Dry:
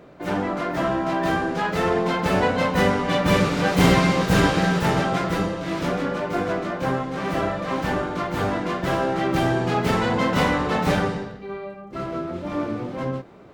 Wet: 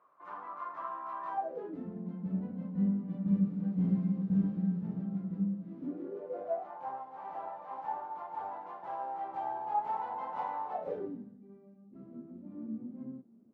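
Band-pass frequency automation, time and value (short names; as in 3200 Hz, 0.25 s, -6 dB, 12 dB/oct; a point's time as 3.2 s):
band-pass, Q 15
1.27 s 1100 Hz
1.89 s 200 Hz
5.65 s 200 Hz
6.71 s 860 Hz
10.69 s 860 Hz
11.21 s 230 Hz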